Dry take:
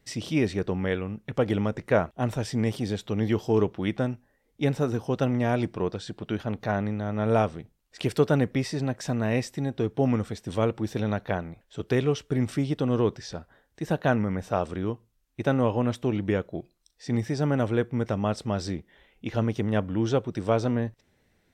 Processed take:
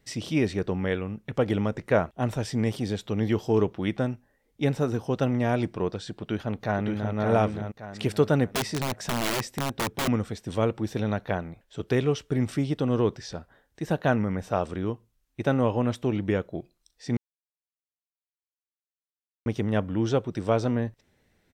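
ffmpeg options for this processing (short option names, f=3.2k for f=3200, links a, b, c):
-filter_complex "[0:a]asplit=2[a][b];[b]afade=t=in:st=6.13:d=0.01,afade=t=out:st=7.14:d=0.01,aecho=0:1:570|1140|1710|2280:0.630957|0.220835|0.0772923|0.0270523[c];[a][c]amix=inputs=2:normalize=0,asettb=1/sr,asplit=3[d][e][f];[d]atrim=end=8.494[g];[e]atrim=start=8.49:end=10.08,asetpts=PTS-STARTPTS,afade=t=in:d=0.004:c=qsin,afade=t=out:st=1.586:d=0.004:c=qsin,aeval=exprs='(mod(11.9*val(0)+1,2)-1)/11.9':c=same[h];[f]atrim=start=10.076[i];[g][h]acrossfade=d=0.004:c1=hsin:c2=qsin[j];[j][i]acrossfade=d=0.004:c1=qsin:c2=hsin,asplit=3[k][l][m];[k]atrim=end=17.17,asetpts=PTS-STARTPTS,afade=t=out:st=17.166:d=0.004:c=hsin[n];[l]atrim=start=17.17:end=19.46,asetpts=PTS-STARTPTS,volume=0[o];[m]atrim=start=19.46,asetpts=PTS-STARTPTS,afade=t=in:d=0.004:c=hsin[p];[n][o][p]concat=n=3:v=0:a=1"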